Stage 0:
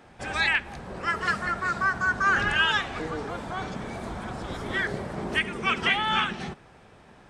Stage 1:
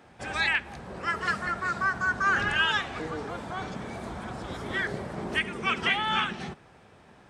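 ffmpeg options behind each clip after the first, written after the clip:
ffmpeg -i in.wav -af "highpass=51,volume=-2dB" out.wav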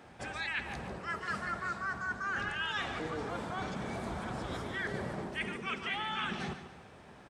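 ffmpeg -i in.wav -af "areverse,acompressor=threshold=-34dB:ratio=6,areverse,aecho=1:1:143|286|429|572:0.282|0.113|0.0451|0.018" out.wav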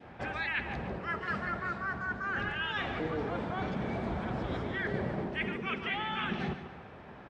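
ffmpeg -i in.wav -af "lowpass=2700,adynamicequalizer=threshold=0.00316:dfrequency=1200:dqfactor=1.1:tfrequency=1200:tqfactor=1.1:attack=5:release=100:ratio=0.375:range=2.5:mode=cutabove:tftype=bell,volume=5dB" out.wav

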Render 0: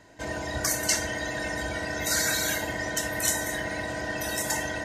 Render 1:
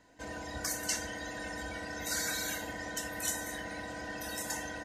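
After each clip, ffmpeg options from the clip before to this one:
ffmpeg -i in.wav -af "aecho=1:1:4:0.38,volume=-9dB" out.wav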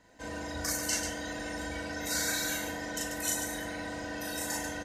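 ffmpeg -i in.wav -af "aecho=1:1:37.9|139.9:0.891|0.501" out.wav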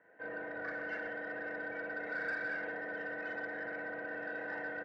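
ffmpeg -i in.wav -filter_complex "[0:a]highpass=frequency=130:width=0.5412,highpass=frequency=130:width=1.3066,equalizer=frequency=170:width_type=q:width=4:gain=-3,equalizer=frequency=250:width_type=q:width=4:gain=-9,equalizer=frequency=450:width_type=q:width=4:gain=5,equalizer=frequency=960:width_type=q:width=4:gain=-8,equalizer=frequency=1600:width_type=q:width=4:gain=8,lowpass=frequency=2200:width=0.5412,lowpass=frequency=2200:width=1.3066,asplit=2[link_01][link_02];[link_02]highpass=frequency=720:poles=1,volume=13dB,asoftclip=type=tanh:threshold=-19dB[link_03];[link_01][link_03]amix=inputs=2:normalize=0,lowpass=frequency=1100:poles=1,volume=-6dB,volume=-6dB" out.wav

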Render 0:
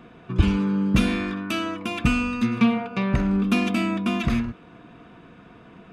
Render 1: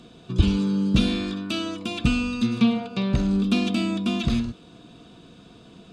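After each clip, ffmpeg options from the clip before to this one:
ffmpeg -i in.wav -filter_complex "[0:a]acrossover=split=3600[link_01][link_02];[link_02]acompressor=threshold=-54dB:ratio=4:attack=1:release=60[link_03];[link_01][link_03]amix=inputs=2:normalize=0,equalizer=frequency=1000:width_type=o:width=1:gain=-5,equalizer=frequency=2000:width_type=o:width=1:gain=-11,equalizer=frequency=4000:width_type=o:width=1:gain=12,equalizer=frequency=8000:width_type=o:width=1:gain=12" out.wav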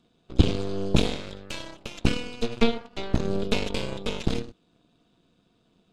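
ffmpeg -i in.wav -af "aeval=exprs='0.596*(cos(1*acos(clip(val(0)/0.596,-1,1)))-cos(1*PI/2))+0.133*(cos(3*acos(clip(val(0)/0.596,-1,1)))-cos(3*PI/2))+0.0944*(cos(6*acos(clip(val(0)/0.596,-1,1)))-cos(6*PI/2))+0.0188*(cos(7*acos(clip(val(0)/0.596,-1,1)))-cos(7*PI/2))':channel_layout=same,volume=1.5dB" out.wav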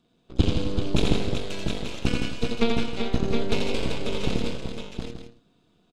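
ffmpeg -i in.wav -af "aecho=1:1:85|166|263|383|716|880:0.631|0.447|0.2|0.473|0.531|0.224,volume=-2.5dB" out.wav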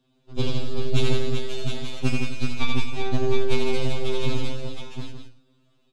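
ffmpeg -i in.wav -af "afftfilt=real='re*2.45*eq(mod(b,6),0)':imag='im*2.45*eq(mod(b,6),0)':win_size=2048:overlap=0.75,volume=2dB" out.wav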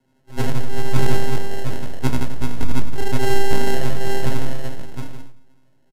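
ffmpeg -i in.wav -af "acrusher=samples=37:mix=1:aa=0.000001,flanger=delay=7:depth=8.1:regen=89:speed=1.9:shape=sinusoidal,aresample=32000,aresample=44100,volume=7dB" out.wav

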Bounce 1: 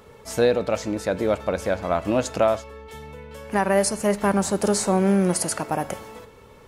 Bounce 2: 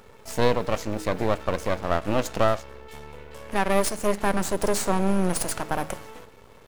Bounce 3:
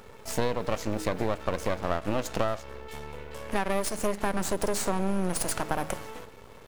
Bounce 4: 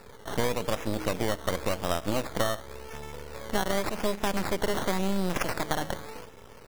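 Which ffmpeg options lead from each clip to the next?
ffmpeg -i in.wav -af "aeval=exprs='max(val(0),0)':channel_layout=same,bandreject=frequency=156.9:width_type=h:width=4,bandreject=frequency=313.8:width_type=h:width=4,bandreject=frequency=470.7:width_type=h:width=4,acrusher=bits=9:dc=4:mix=0:aa=0.000001,volume=1.5dB" out.wav
ffmpeg -i in.wav -af "acompressor=threshold=-24dB:ratio=5,volume=1.5dB" out.wav
ffmpeg -i in.wav -af "acrusher=samples=14:mix=1:aa=0.000001:lfo=1:lforange=8.4:lforate=0.9" out.wav

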